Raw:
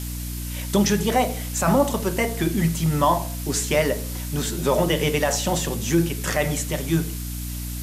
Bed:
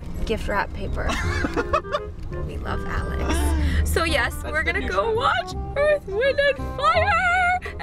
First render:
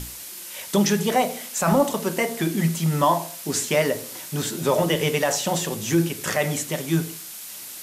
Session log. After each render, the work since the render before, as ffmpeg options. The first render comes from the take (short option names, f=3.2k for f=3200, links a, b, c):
-af "bandreject=f=60:t=h:w=6,bandreject=f=120:t=h:w=6,bandreject=f=180:t=h:w=6,bandreject=f=240:t=h:w=6,bandreject=f=300:t=h:w=6,bandreject=f=360:t=h:w=6"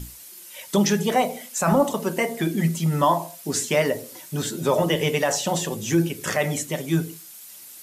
-af "afftdn=nr=9:nf=-38"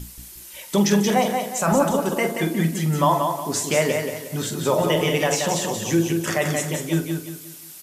-filter_complex "[0:a]asplit=2[a][b];[b]adelay=45,volume=-11dB[c];[a][c]amix=inputs=2:normalize=0,asplit=2[d][e];[e]aecho=0:1:179|358|537|716:0.562|0.197|0.0689|0.0241[f];[d][f]amix=inputs=2:normalize=0"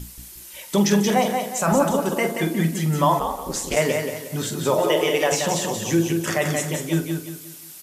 -filter_complex "[0:a]asplit=3[a][b][c];[a]afade=t=out:st=3.19:d=0.02[d];[b]aeval=exprs='val(0)*sin(2*PI*110*n/s)':c=same,afade=t=in:st=3.19:d=0.02,afade=t=out:st=3.75:d=0.02[e];[c]afade=t=in:st=3.75:d=0.02[f];[d][e][f]amix=inputs=3:normalize=0,asettb=1/sr,asplit=3[g][h][i];[g]atrim=end=4.794[j];[h]atrim=start=4.79:end=5.32,asetpts=PTS-STARTPTS,afade=t=in:d=0.004:c=qsin,afade=t=out:st=0.526:d=0.004:c=qsin,lowshelf=f=270:t=q:w=1.5:g=-9[k];[i]atrim=start=5.316[l];[j][k]acrossfade=d=0.004:c1=hsin:c2=qsin[m];[m][l]acrossfade=d=0.004:c1=qsin:c2=hsin"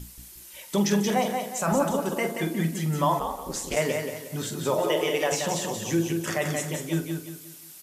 -af "volume=-5dB"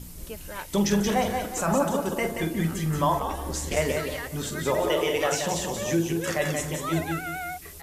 -filter_complex "[1:a]volume=-14.5dB[a];[0:a][a]amix=inputs=2:normalize=0"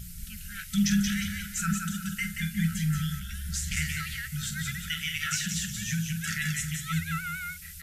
-af "afftfilt=real='re*(1-between(b*sr/4096,220,1300))':imag='im*(1-between(b*sr/4096,220,1300))':win_size=4096:overlap=0.75"